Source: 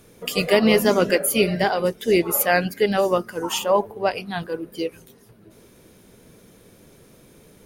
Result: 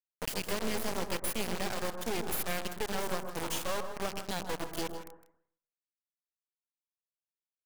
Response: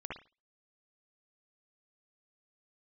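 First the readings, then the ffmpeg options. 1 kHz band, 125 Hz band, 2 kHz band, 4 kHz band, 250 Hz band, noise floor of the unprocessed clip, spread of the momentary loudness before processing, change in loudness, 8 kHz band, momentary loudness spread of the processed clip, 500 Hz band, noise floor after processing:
-13.0 dB, -13.0 dB, -14.0 dB, -11.0 dB, -16.0 dB, -52 dBFS, 12 LU, -14.5 dB, -10.0 dB, 4 LU, -17.5 dB, under -85 dBFS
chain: -filter_complex "[0:a]highshelf=f=6300:g=6.5,acompressor=threshold=0.0178:ratio=4,acrusher=bits=3:dc=4:mix=0:aa=0.000001,aecho=1:1:159:0.224,asplit=2[s0][s1];[1:a]atrim=start_sample=2205,asetrate=22050,aresample=44100[s2];[s1][s2]afir=irnorm=-1:irlink=0,volume=0.335[s3];[s0][s3]amix=inputs=2:normalize=0"

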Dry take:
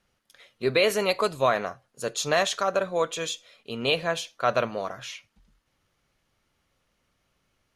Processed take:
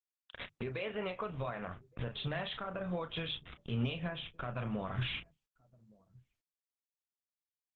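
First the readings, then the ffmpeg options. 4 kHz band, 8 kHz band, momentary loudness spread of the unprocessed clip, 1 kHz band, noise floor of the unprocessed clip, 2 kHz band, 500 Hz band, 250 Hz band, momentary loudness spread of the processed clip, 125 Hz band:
-11.5 dB, under -40 dB, 14 LU, -15.5 dB, -74 dBFS, -13.0 dB, -16.0 dB, -5.0 dB, 7 LU, +1.0 dB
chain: -filter_complex "[0:a]aresample=11025,acrusher=bits=7:mix=0:aa=0.000001,aresample=44100,acompressor=threshold=0.0178:ratio=16,asplit=2[s0][s1];[s1]adelay=33,volume=0.355[s2];[s0][s2]amix=inputs=2:normalize=0,alimiter=level_in=4.22:limit=0.0631:level=0:latency=1:release=492,volume=0.237,aresample=8000,aresample=44100,asubboost=boost=9:cutoff=160,asplit=2[s3][s4];[s4]adelay=1166,volume=0.0501,highshelf=f=4000:g=-26.2[s5];[s3][s5]amix=inputs=2:normalize=0,asoftclip=type=tanh:threshold=0.0168,bandreject=f=50:t=h:w=6,bandreject=f=100:t=h:w=6,bandreject=f=150:t=h:w=6,afftdn=nr=19:nf=-68,volume=3.35" -ar 48000 -c:a libopus -b:a 12k

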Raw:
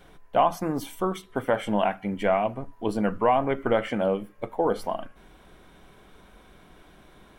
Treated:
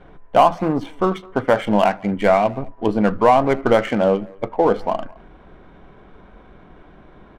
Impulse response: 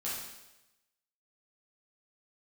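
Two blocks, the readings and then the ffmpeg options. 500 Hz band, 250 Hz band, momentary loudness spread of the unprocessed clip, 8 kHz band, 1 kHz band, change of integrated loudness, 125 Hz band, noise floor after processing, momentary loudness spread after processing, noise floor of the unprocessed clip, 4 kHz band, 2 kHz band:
+8.0 dB, +8.0 dB, 8 LU, no reading, +8.0 dB, +8.0 dB, +8.0 dB, -47 dBFS, 8 LU, -54 dBFS, +6.5 dB, +7.5 dB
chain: -filter_complex "[0:a]adynamicsmooth=sensitivity=7:basefreq=1800,asplit=2[s0][s1];[s1]adelay=210,highpass=300,lowpass=3400,asoftclip=type=hard:threshold=0.106,volume=0.0631[s2];[s0][s2]amix=inputs=2:normalize=0,volume=2.51"

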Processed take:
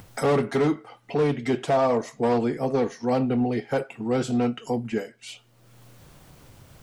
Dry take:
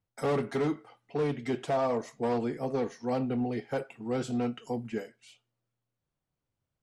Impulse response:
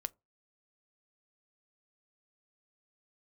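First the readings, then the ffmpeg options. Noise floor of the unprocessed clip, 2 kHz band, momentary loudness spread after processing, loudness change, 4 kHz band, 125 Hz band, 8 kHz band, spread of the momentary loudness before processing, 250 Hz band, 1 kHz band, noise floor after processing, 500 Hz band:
under -85 dBFS, +7.5 dB, 9 LU, +7.0 dB, +8.0 dB, +7.0 dB, +8.5 dB, 8 LU, +7.0 dB, +7.0 dB, -59 dBFS, +7.0 dB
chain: -af "acompressor=mode=upward:threshold=0.0224:ratio=2.5,volume=2.24"

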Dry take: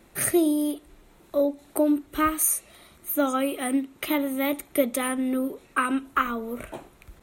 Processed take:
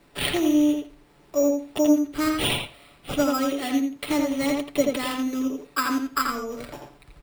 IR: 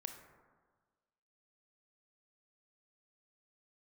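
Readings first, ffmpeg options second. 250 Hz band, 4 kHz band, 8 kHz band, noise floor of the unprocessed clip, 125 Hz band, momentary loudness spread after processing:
+2.5 dB, +9.5 dB, -5.5 dB, -56 dBFS, no reading, 11 LU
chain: -filter_complex "[0:a]aecho=1:1:6.9:0.53,acrusher=samples=7:mix=1:aa=0.000001,asplit=2[s0][s1];[s1]adelay=84,lowpass=f=4000:p=1,volume=0.708,asplit=2[s2][s3];[s3]adelay=84,lowpass=f=4000:p=1,volume=0.17,asplit=2[s4][s5];[s5]adelay=84,lowpass=f=4000:p=1,volume=0.17[s6];[s0][s2][s4][s6]amix=inputs=4:normalize=0,volume=0.75"

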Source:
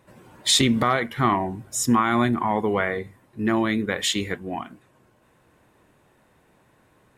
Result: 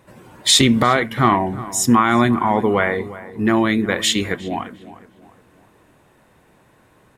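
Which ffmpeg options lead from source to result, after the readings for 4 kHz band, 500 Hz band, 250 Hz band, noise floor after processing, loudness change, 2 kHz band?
+5.5 dB, +5.5 dB, +5.5 dB, -55 dBFS, +5.5 dB, +5.5 dB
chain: -filter_complex "[0:a]asplit=2[s0][s1];[s1]adelay=356,lowpass=f=2000:p=1,volume=0.158,asplit=2[s2][s3];[s3]adelay=356,lowpass=f=2000:p=1,volume=0.4,asplit=2[s4][s5];[s5]adelay=356,lowpass=f=2000:p=1,volume=0.4,asplit=2[s6][s7];[s7]adelay=356,lowpass=f=2000:p=1,volume=0.4[s8];[s0][s2][s4][s6][s8]amix=inputs=5:normalize=0,volume=1.88"

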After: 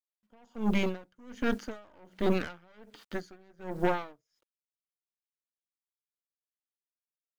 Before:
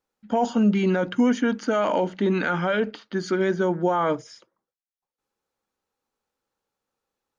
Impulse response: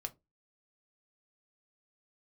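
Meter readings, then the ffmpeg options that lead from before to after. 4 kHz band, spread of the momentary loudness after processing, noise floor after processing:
-8.0 dB, 19 LU, under -85 dBFS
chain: -af "acrusher=bits=8:mix=0:aa=0.000001,aeval=exprs='0.316*(cos(1*acos(clip(val(0)/0.316,-1,1)))-cos(1*PI/2))+0.0631*(cos(6*acos(clip(val(0)/0.316,-1,1)))-cos(6*PI/2))':c=same,aeval=exprs='val(0)*pow(10,-34*(0.5-0.5*cos(2*PI*1.3*n/s))/20)':c=same,volume=0.596"

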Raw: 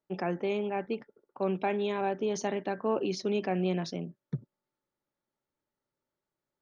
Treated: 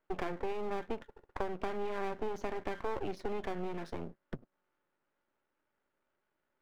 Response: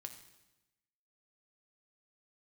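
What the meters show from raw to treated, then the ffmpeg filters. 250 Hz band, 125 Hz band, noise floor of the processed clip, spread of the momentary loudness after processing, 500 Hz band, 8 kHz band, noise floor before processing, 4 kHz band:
-9.5 dB, -11.0 dB, -84 dBFS, 8 LU, -7.0 dB, no reading, under -85 dBFS, -10.0 dB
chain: -filter_complex "[0:a]equalizer=f=1500:w=4.6:g=8.5,acompressor=threshold=0.0126:ratio=12,acrossover=split=210 2500:gain=0.2 1 0.112[s0][s1][s2];[s0][s1][s2]amix=inputs=3:normalize=0,aeval=exprs='max(val(0),0)':c=same,volume=3.35"

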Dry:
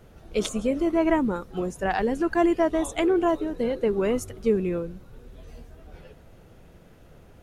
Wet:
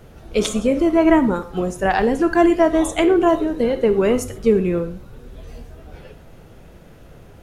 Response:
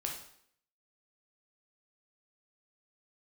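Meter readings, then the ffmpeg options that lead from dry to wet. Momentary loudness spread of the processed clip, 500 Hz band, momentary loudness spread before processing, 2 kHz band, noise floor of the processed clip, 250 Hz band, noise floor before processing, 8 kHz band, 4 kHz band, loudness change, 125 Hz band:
8 LU, +7.0 dB, 8 LU, +7.0 dB, -44 dBFS, +7.5 dB, -51 dBFS, +7.0 dB, +7.0 dB, +7.0 dB, +7.5 dB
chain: -filter_complex "[0:a]asplit=2[s0][s1];[1:a]atrim=start_sample=2205,afade=t=out:st=0.19:d=0.01,atrim=end_sample=8820[s2];[s1][s2]afir=irnorm=-1:irlink=0,volume=0.562[s3];[s0][s3]amix=inputs=2:normalize=0,volume=1.5"

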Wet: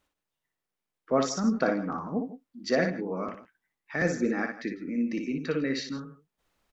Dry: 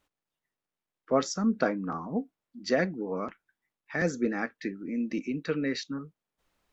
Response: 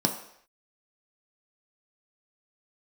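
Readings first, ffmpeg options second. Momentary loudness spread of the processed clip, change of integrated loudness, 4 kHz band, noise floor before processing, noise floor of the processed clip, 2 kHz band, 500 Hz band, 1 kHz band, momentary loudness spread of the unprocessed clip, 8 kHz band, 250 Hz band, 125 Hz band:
12 LU, +1.5 dB, +1.0 dB, under -85 dBFS, under -85 dBFS, +1.5 dB, +1.0 dB, +1.0 dB, 11 LU, no reading, +1.5 dB, +1.5 dB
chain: -af "aecho=1:1:59|148|164:0.531|0.112|0.141"

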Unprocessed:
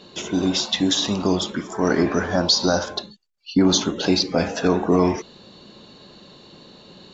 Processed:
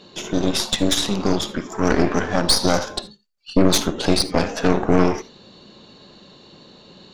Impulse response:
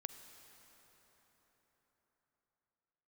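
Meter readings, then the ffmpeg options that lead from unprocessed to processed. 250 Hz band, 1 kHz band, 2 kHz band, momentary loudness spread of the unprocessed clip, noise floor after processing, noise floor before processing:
0.0 dB, +2.0 dB, +1.5 dB, 7 LU, -48 dBFS, -48 dBFS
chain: -filter_complex "[0:a]aeval=exprs='0.501*(cos(1*acos(clip(val(0)/0.501,-1,1)))-cos(1*PI/2))+0.158*(cos(4*acos(clip(val(0)/0.501,-1,1)))-cos(4*PI/2))':c=same[s0];[1:a]atrim=start_sample=2205,atrim=end_sample=3969[s1];[s0][s1]afir=irnorm=-1:irlink=0,volume=1.5"

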